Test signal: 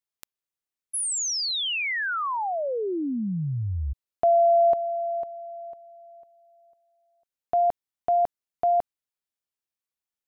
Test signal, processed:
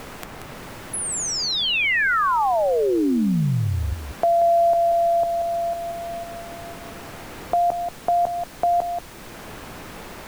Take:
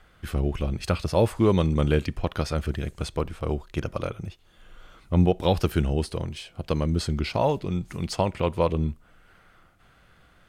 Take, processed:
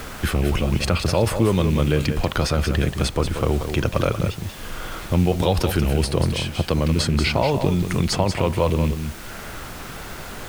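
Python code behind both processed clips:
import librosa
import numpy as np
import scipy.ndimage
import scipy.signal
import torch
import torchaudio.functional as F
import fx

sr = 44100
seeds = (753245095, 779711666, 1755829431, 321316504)

p1 = fx.rattle_buzz(x, sr, strikes_db=-20.0, level_db=-31.0)
p2 = fx.over_compress(p1, sr, threshold_db=-30.0, ratio=-1.0)
p3 = p1 + (p2 * librosa.db_to_amplitude(3.0))
p4 = fx.dmg_noise_colour(p3, sr, seeds[0], colour='pink', level_db=-43.0)
p5 = p4 + 10.0 ** (-9.0 / 20.0) * np.pad(p4, (int(183 * sr / 1000.0), 0))[:len(p4)]
y = fx.band_squash(p5, sr, depth_pct=40)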